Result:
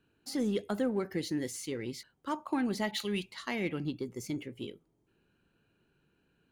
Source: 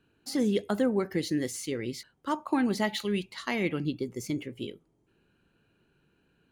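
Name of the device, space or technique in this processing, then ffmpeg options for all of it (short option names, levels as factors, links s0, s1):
parallel distortion: -filter_complex "[0:a]asplit=2[s0][s1];[s1]asoftclip=type=hard:threshold=0.0251,volume=0.251[s2];[s0][s2]amix=inputs=2:normalize=0,asettb=1/sr,asplit=3[s3][s4][s5];[s3]atrim=end=2.914[s6];[s4]atrim=start=2.91:end=3.31,asetpts=PTS-STARTPTS,afade=t=in:d=0.004:c=qsin,afade=t=out:st=0.396:d=0.004:c=qsin,adynamicequalizer=threshold=0.00562:dfrequency=1700:dqfactor=0.7:tfrequency=1700:tqfactor=0.7:attack=5:release=100:ratio=0.375:range=2.5:mode=boostabove:tftype=highshelf[s7];[s5]atrim=start=3.306[s8];[s6][s7]acrossfade=d=0.004:c1=hsin:c2=qsin[s9];[s9][s8]acrossfade=d=0.004:c1=qsin:c2=hsin,volume=0.531"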